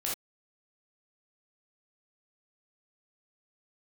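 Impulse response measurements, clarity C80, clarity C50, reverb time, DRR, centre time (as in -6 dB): 12.0 dB, 2.5 dB, no single decay rate, -5.0 dB, 38 ms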